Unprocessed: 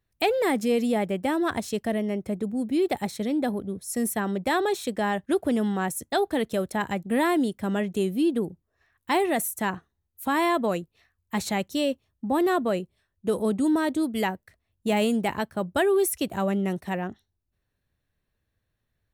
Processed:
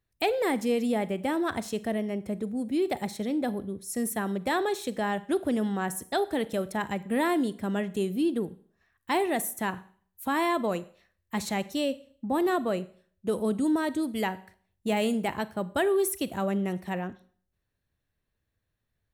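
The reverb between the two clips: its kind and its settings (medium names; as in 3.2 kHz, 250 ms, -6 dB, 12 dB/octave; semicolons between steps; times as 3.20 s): Schroeder reverb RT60 0.5 s, combs from 33 ms, DRR 16 dB; trim -3 dB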